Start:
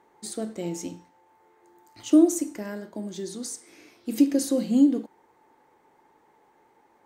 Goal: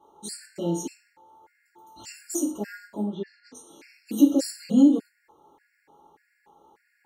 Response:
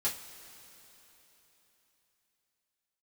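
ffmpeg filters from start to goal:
-filter_complex "[0:a]asplit=3[s0][s1][s2];[s0]afade=t=out:st=3.02:d=0.02[s3];[s1]lowpass=f=2900:w=0.5412,lowpass=f=2900:w=1.3066,afade=t=in:st=3.02:d=0.02,afade=t=out:st=3.54:d=0.02[s4];[s2]afade=t=in:st=3.54:d=0.02[s5];[s3][s4][s5]amix=inputs=3:normalize=0[s6];[1:a]atrim=start_sample=2205,atrim=end_sample=6174[s7];[s6][s7]afir=irnorm=-1:irlink=0,afftfilt=real='re*gt(sin(2*PI*1.7*pts/sr)*(1-2*mod(floor(b*sr/1024/1400),2)),0)':imag='im*gt(sin(2*PI*1.7*pts/sr)*(1-2*mod(floor(b*sr/1024/1400),2)),0)':win_size=1024:overlap=0.75"

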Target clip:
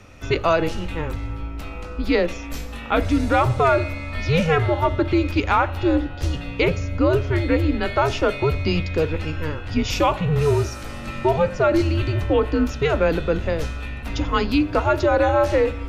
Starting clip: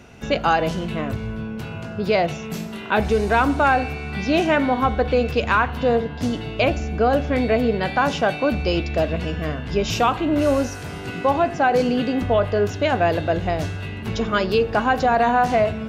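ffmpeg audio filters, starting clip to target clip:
-af "afreqshift=-160"

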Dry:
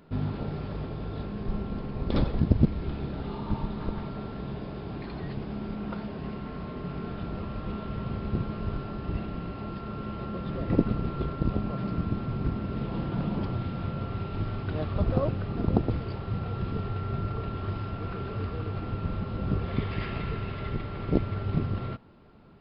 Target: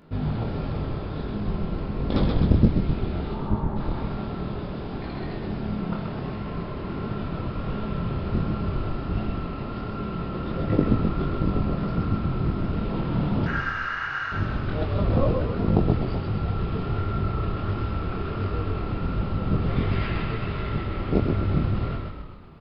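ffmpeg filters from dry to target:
-filter_complex "[0:a]asplit=3[s0][s1][s2];[s0]afade=t=out:st=3.33:d=0.02[s3];[s1]lowpass=f=1700:w=0.5412,lowpass=f=1700:w=1.3066,afade=t=in:st=3.33:d=0.02,afade=t=out:st=3.75:d=0.02[s4];[s2]afade=t=in:st=3.75:d=0.02[s5];[s3][s4][s5]amix=inputs=3:normalize=0,asettb=1/sr,asplit=3[s6][s7][s8];[s6]atrim=end=13.464[s9];[s7]atrim=start=13.46:end=14.32,asetpts=PTS-STARTPTS,afade=t=in:d=0.004:c=qsin,afade=t=out:st=0.856:d=0.004:c=qsin,aeval=exprs='val(0)*sin(2*PI*1500*n/s)':c=same[s10];[s8]atrim=start=14.316[s11];[s9][s10]acrossfade=d=0.004:c1=hsin:c2=qsin[s12];[s12][s11]acrossfade=d=0.004:c1=qsin:c2=hsin,flanger=delay=19:depth=7.9:speed=1.4,asplit=9[s13][s14][s15][s16][s17][s18][s19][s20][s21];[s14]adelay=129,afreqshift=-37,volume=0.668[s22];[s15]adelay=258,afreqshift=-74,volume=0.376[s23];[s16]adelay=387,afreqshift=-111,volume=0.209[s24];[s17]adelay=516,afreqshift=-148,volume=0.117[s25];[s18]adelay=645,afreqshift=-185,volume=0.0661[s26];[s19]adelay=774,afreqshift=-222,volume=0.0367[s27];[s20]adelay=903,afreqshift=-259,volume=0.0207[s28];[s21]adelay=1032,afreqshift=-296,volume=0.0115[s29];[s13][s22][s23][s24][s25][s26][s27][s28][s29]amix=inputs=9:normalize=0,volume=2"

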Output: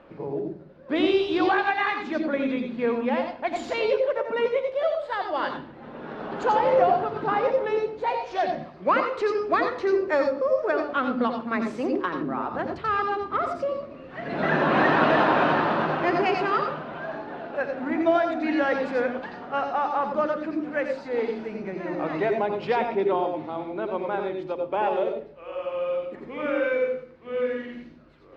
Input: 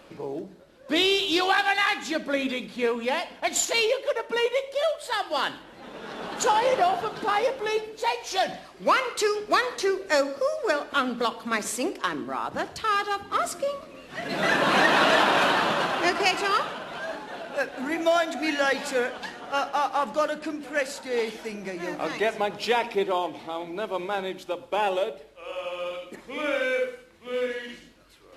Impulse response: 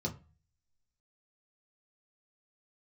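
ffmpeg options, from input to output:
-filter_complex "[0:a]lowpass=1800,asplit=2[s0][s1];[1:a]atrim=start_sample=2205,highshelf=f=3800:g=11.5,adelay=86[s2];[s1][s2]afir=irnorm=-1:irlink=0,volume=0.355[s3];[s0][s3]amix=inputs=2:normalize=0"

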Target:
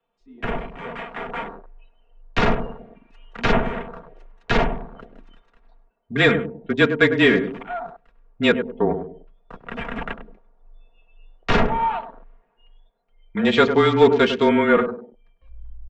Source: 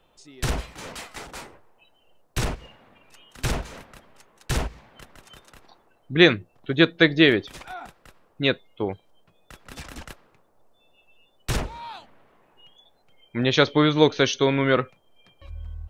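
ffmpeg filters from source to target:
-filter_complex "[0:a]bandreject=f=60:t=h:w=6,bandreject=f=120:t=h:w=6,bandreject=f=180:t=h:w=6,bandreject=f=240:t=h:w=6,bandreject=f=300:t=h:w=6,bandreject=f=360:t=h:w=6,bandreject=f=420:t=h:w=6,bandreject=f=480:t=h:w=6,asoftclip=type=tanh:threshold=0.708,aecho=1:1:4.2:0.76,dynaudnorm=f=200:g=13:m=4.22,lowshelf=f=160:g=-7.5,asplit=2[s0][s1];[s1]adelay=100,lowpass=f=860:p=1,volume=0.422,asplit=2[s2][s3];[s3]adelay=100,lowpass=f=860:p=1,volume=0.36,asplit=2[s4][s5];[s5]adelay=100,lowpass=f=860:p=1,volume=0.36,asplit=2[s6][s7];[s7]adelay=100,lowpass=f=860:p=1,volume=0.36[s8];[s2][s4][s6][s8]amix=inputs=4:normalize=0[s9];[s0][s9]amix=inputs=2:normalize=0,afreqshift=-25,asplit=2[s10][s11];[s11]acontrast=89,volume=1.26[s12];[s10][s12]amix=inputs=2:normalize=0,lowpass=2400,afwtdn=0.0447,volume=0.355"

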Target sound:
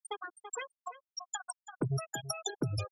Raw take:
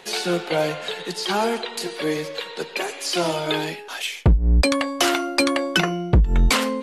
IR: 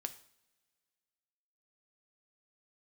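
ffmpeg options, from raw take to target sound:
-filter_complex "[0:a]asplit=2[s0][s1];[s1]asoftclip=type=tanh:threshold=0.0794,volume=0.631[s2];[s0][s2]amix=inputs=2:normalize=0,asetrate=103194,aresample=44100,bandreject=f=1900:w=9.6,acrossover=split=160|4200[s3][s4][s5];[s4]acrusher=bits=2:mix=0:aa=0.5[s6];[s3][s6][s5]amix=inputs=3:normalize=0,lowshelf=f=70:g=-11,bandreject=f=50:t=h:w=6,bandreject=f=100:t=h:w=6,bandreject=f=150:t=h:w=6,afftfilt=real='re*gte(hypot(re,im),0.316)':imag='im*gte(hypot(re,im),0.316)':win_size=1024:overlap=0.75,acompressor=threshold=0.0224:ratio=6,lowshelf=f=370:g=3.5,asplit=2[s7][s8];[s8]adelay=332.4,volume=0.2,highshelf=f=4000:g=-7.48[s9];[s7][s9]amix=inputs=2:normalize=0,acrossover=split=380|3000[s10][s11][s12];[s11]acompressor=threshold=0.00891:ratio=4[s13];[s10][s13][s12]amix=inputs=3:normalize=0"

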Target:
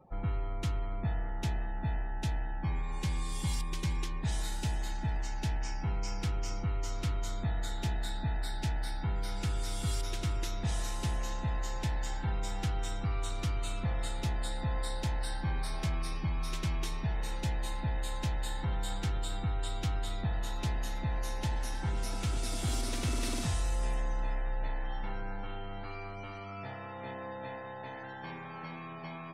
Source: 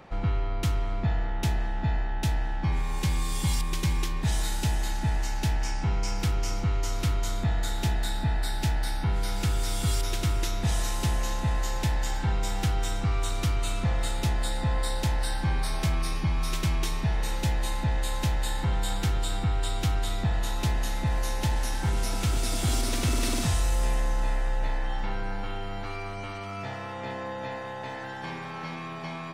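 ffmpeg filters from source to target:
-af "afftdn=nr=26:nf=-46,volume=0.473"

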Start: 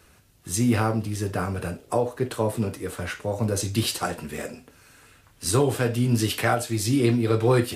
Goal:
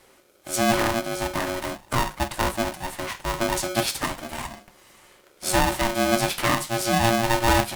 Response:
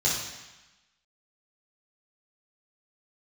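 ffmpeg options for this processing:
-af "aeval=exprs='val(0)*sgn(sin(2*PI*460*n/s))':c=same"

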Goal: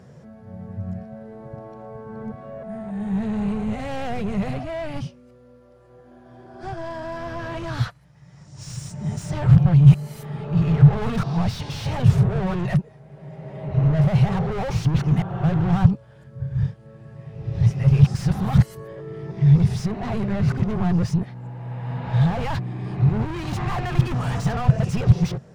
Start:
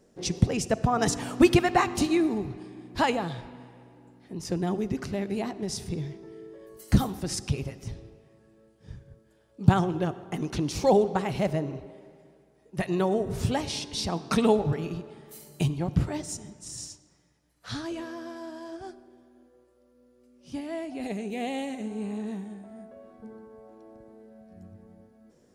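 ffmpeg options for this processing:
-filter_complex "[0:a]areverse,asplit=2[s0][s1];[s1]highpass=f=720:p=1,volume=100,asoftclip=type=tanh:threshold=0.631[s2];[s0][s2]amix=inputs=2:normalize=0,lowpass=f=1100:p=1,volume=0.501,lowshelf=f=200:t=q:w=3:g=13.5,volume=0.2"

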